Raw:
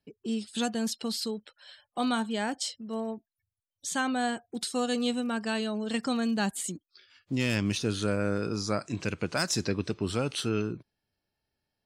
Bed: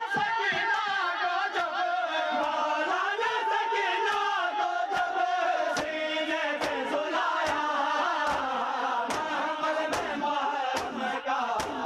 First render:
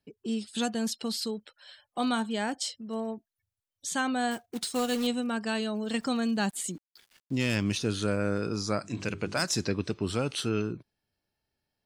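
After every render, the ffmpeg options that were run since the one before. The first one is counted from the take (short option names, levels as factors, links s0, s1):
-filter_complex "[0:a]asettb=1/sr,asplit=3[s0][s1][s2];[s0]atrim=end=4.314[s3];[s1]atrim=start=4.31:end=5.07,asetpts=PTS-STARTPTS,afade=t=in:d=0.004:c=qsin,afade=t=out:st=0.756:d=0.004:c=qsin,acrusher=bits=3:mode=log:mix=0:aa=0.000001[s4];[s2]atrim=start=5.066[s5];[s3][s4]acrossfade=d=0.004:c1=hsin:c2=qsin[s6];[s6][s5]acrossfade=d=0.004:c1=qsin:c2=hsin,asettb=1/sr,asplit=3[s7][s8][s9];[s7]atrim=end=5.754[s10];[s8]atrim=start=5.75:end=7.64,asetpts=PTS-STARTPTS,afade=t=in:d=0.004:c=qsin,afade=t=out:st=1.886:d=0.004:c=qsin,aeval=exprs='val(0)*gte(abs(val(0)),0.00178)':c=same[s11];[s9]atrim=start=7.636[s12];[s10][s11]acrossfade=d=0.004:c1=hsin:c2=qsin[s13];[s13][s12]acrossfade=d=0.004:c1=qsin:c2=hsin,asplit=3[s14][s15][s16];[s14]afade=t=out:st=8.83:d=0.02[s17];[s15]bandreject=f=50:t=h:w=6,bandreject=f=100:t=h:w=6,bandreject=f=150:t=h:w=6,bandreject=f=200:t=h:w=6,bandreject=f=250:t=h:w=6,bandreject=f=300:t=h:w=6,bandreject=f=350:t=h:w=6,bandreject=f=400:t=h:w=6,afade=t=in:st=8.83:d=0.02,afade=t=out:st=9.45:d=0.02[s18];[s16]afade=t=in:st=9.45:d=0.02[s19];[s17][s18][s19]amix=inputs=3:normalize=0"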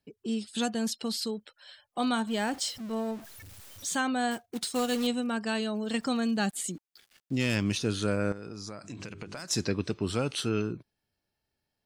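-filter_complex "[0:a]asettb=1/sr,asplit=3[s0][s1][s2];[s0]atrim=end=2.274[s3];[s1]atrim=start=2.27:end=3.97,asetpts=PTS-STARTPTS,afade=t=in:d=0.004:c=qsin,afade=t=out:st=1.696:d=0.004:c=qsin,aeval=exprs='val(0)+0.5*0.00891*sgn(val(0))':c=same[s4];[s2]atrim=start=3.966[s5];[s3][s4]acrossfade=d=0.004:c1=hsin:c2=qsin[s6];[s6][s5]acrossfade=d=0.004:c1=qsin:c2=hsin,asettb=1/sr,asplit=3[s7][s8][s9];[s7]atrim=end=6.384[s10];[s8]atrim=start=6.38:end=7.44,asetpts=PTS-STARTPTS,afade=t=in:d=0.004:c=qsin,afade=t=out:st=1.056:d=0.004:c=qsin,asuperstop=centerf=970:order=4:qfactor=7.6[s11];[s9]atrim=start=7.436[s12];[s10][s11]acrossfade=d=0.004:c1=hsin:c2=qsin[s13];[s13][s12]acrossfade=d=0.004:c1=qsin:c2=hsin,asettb=1/sr,asplit=3[s14][s15][s16];[s14]atrim=end=8.324[s17];[s15]atrim=start=8.32:end=9.51,asetpts=PTS-STARTPTS,afade=t=in:d=0.004:c=qsin,afade=t=out:st=1.186:d=0.004:c=qsin,acompressor=threshold=0.0158:ratio=10:attack=3.2:release=140:knee=1:detection=peak[s18];[s16]atrim=start=9.506[s19];[s17][s18]acrossfade=d=0.004:c1=hsin:c2=qsin[s20];[s20][s19]acrossfade=d=0.004:c1=qsin:c2=hsin"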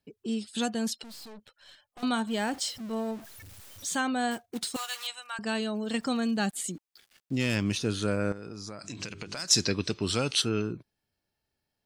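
-filter_complex "[0:a]asettb=1/sr,asplit=3[s0][s1][s2];[s0]atrim=end=1.034[s3];[s1]atrim=start=1.03:end=2.03,asetpts=PTS-STARTPTS,afade=t=in:d=0.004:c=qsin,afade=t=out:st=0.996:d=0.004:c=qsin,aeval=exprs='(tanh(178*val(0)+0.55)-tanh(0.55))/178':c=same[s4];[s2]atrim=start=2.026[s5];[s3][s4]acrossfade=d=0.004:c1=hsin:c2=qsin[s6];[s6][s5]acrossfade=d=0.004:c1=qsin:c2=hsin,asettb=1/sr,asplit=3[s7][s8][s9];[s7]atrim=end=4.764[s10];[s8]atrim=start=4.76:end=5.39,asetpts=PTS-STARTPTS,afade=t=in:d=0.004:c=qsin,afade=t=out:st=0.626:d=0.004:c=qsin,highpass=f=950:w=0.5412,highpass=f=950:w=1.3066[s11];[s9]atrim=start=5.386[s12];[s10][s11]acrossfade=d=0.004:c1=hsin:c2=qsin[s13];[s13][s12]acrossfade=d=0.004:c1=qsin:c2=hsin,asettb=1/sr,asplit=3[s14][s15][s16];[s14]atrim=end=8.794[s17];[s15]atrim=start=8.79:end=10.42,asetpts=PTS-STARTPTS,afade=t=in:d=0.004:c=qsin,afade=t=out:st=1.626:d=0.004:c=qsin,equalizer=f=5000:w=0.55:g=9.5[s18];[s16]atrim=start=10.416[s19];[s17][s18]acrossfade=d=0.004:c1=hsin:c2=qsin[s20];[s20][s19]acrossfade=d=0.004:c1=qsin:c2=hsin"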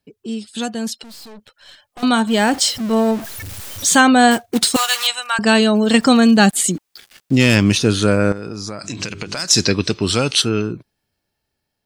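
-af "dynaudnorm=f=650:g=7:m=4.22,alimiter=level_in=1.88:limit=0.891:release=50:level=0:latency=1"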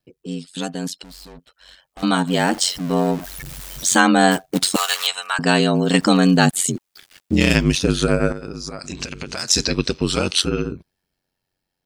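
-af "aeval=exprs='val(0)*sin(2*PI*46*n/s)':c=same"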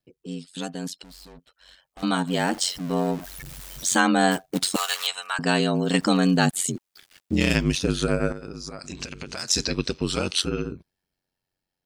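-af "volume=0.531"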